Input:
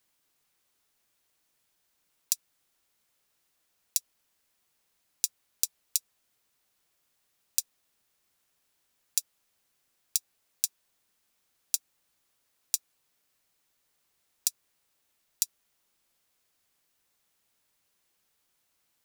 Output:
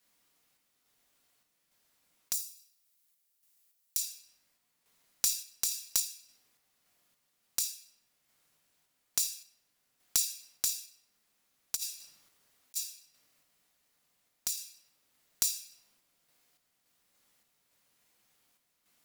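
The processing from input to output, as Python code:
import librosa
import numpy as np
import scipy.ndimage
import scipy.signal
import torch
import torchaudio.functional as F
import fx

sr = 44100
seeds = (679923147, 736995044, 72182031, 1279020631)

y = fx.low_shelf(x, sr, hz=88.0, db=-5.5)
y = fx.room_shoebox(y, sr, seeds[0], volume_m3=330.0, walls='mixed', distance_m=1.8)
y = fx.over_compress(y, sr, threshold_db=-33.0, ratio=-0.5, at=(11.75, 12.75), fade=0.02)
y = fx.clip_asym(y, sr, top_db=-15.5, bottom_db=-4.0)
y = fx.pre_emphasis(y, sr, coefficient=0.8, at=(2.33, 3.97))
y = fx.tremolo_random(y, sr, seeds[1], hz=3.5, depth_pct=55)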